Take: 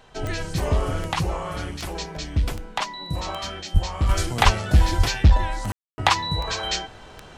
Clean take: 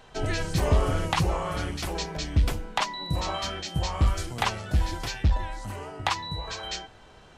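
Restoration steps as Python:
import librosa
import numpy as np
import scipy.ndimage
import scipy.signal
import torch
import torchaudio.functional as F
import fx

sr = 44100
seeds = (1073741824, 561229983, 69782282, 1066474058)

y = fx.fix_declick_ar(x, sr, threshold=10.0)
y = fx.fix_deplosive(y, sr, at_s=(3.73, 4.44, 4.97))
y = fx.fix_ambience(y, sr, seeds[0], print_start_s=6.86, print_end_s=7.36, start_s=5.72, end_s=5.98)
y = fx.fix_level(y, sr, at_s=4.09, step_db=-8.0)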